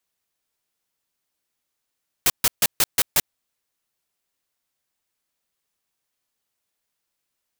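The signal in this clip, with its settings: noise bursts white, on 0.04 s, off 0.14 s, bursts 6, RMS -17 dBFS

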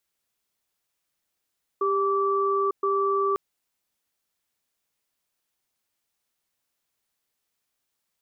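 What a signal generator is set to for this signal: cadence 396 Hz, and 1160 Hz, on 0.90 s, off 0.12 s, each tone -23.5 dBFS 1.55 s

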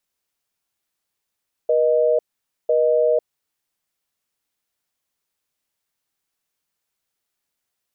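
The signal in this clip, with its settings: call progress tone busy tone, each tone -17 dBFS 1.62 s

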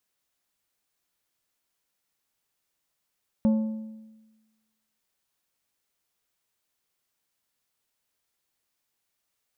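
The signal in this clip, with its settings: metal hit plate, lowest mode 219 Hz, decay 1.21 s, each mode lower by 12 dB, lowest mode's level -16.5 dB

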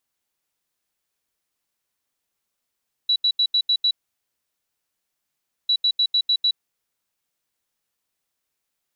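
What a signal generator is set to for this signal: beep pattern sine 3930 Hz, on 0.07 s, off 0.08 s, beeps 6, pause 1.78 s, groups 2, -15.5 dBFS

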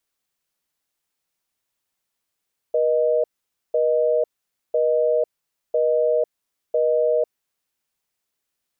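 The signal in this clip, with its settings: call progress tone busy tone, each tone -19 dBFS 4.91 s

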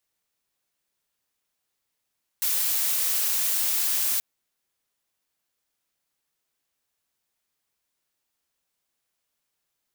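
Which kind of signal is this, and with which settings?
noise blue, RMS -24.5 dBFS 1.78 s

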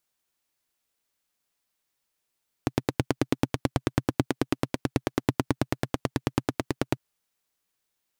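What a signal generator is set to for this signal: single-cylinder engine model, steady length 4.30 s, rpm 1100, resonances 130/270 Hz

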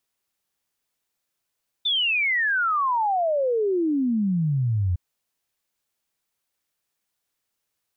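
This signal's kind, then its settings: log sweep 3600 Hz -> 85 Hz 3.11 s -19.5 dBFS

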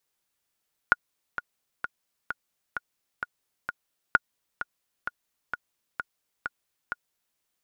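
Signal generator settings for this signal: metronome 130 bpm, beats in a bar 7, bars 2, 1440 Hz, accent 12.5 dB -4.5 dBFS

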